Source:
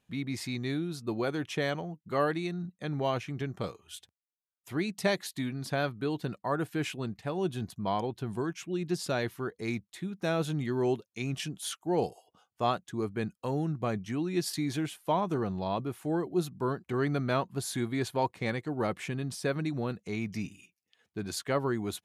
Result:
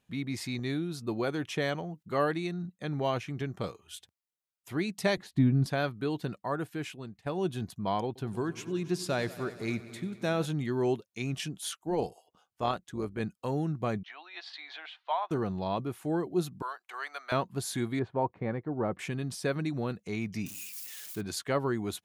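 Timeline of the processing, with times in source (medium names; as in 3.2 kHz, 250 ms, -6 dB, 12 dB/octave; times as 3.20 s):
0.59–2.03 s: upward compressor, threshold -36 dBFS
5.17–5.66 s: tilt EQ -4.5 dB/octave
6.23–7.26 s: fade out, to -11 dB
8.06–10.46 s: multi-head delay 94 ms, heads all three, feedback 53%, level -20 dB
11.71–13.20 s: AM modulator 160 Hz, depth 30%
14.03–15.31 s: elliptic band-pass 710–3900 Hz, stop band 60 dB
16.62–17.32 s: high-pass 770 Hz 24 dB/octave
17.99–18.99 s: low-pass 1.2 kHz
20.46–21.21 s: zero-crossing glitches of -34 dBFS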